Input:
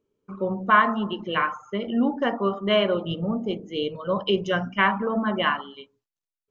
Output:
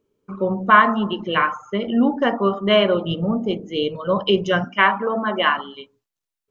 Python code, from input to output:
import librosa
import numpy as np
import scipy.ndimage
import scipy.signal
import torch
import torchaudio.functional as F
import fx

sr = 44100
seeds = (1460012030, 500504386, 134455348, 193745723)

y = fx.highpass(x, sr, hz=300.0, slope=12, at=(4.64, 5.57))
y = F.gain(torch.from_numpy(y), 5.0).numpy()